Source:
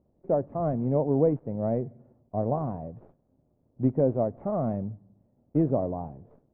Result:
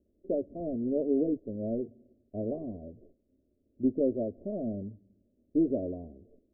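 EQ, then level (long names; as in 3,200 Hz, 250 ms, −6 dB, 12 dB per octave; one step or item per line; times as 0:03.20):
Butterworth low-pass 730 Hz 48 dB per octave
phaser with its sweep stopped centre 340 Hz, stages 4
notch filter 490 Hz, Q 12
0.0 dB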